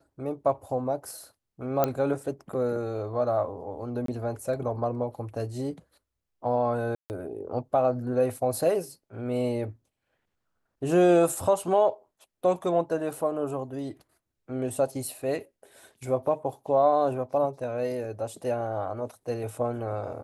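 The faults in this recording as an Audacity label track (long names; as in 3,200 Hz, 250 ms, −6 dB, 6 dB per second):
1.840000	1.840000	click −10 dBFS
4.060000	4.080000	drop-out 23 ms
6.950000	7.100000	drop-out 149 ms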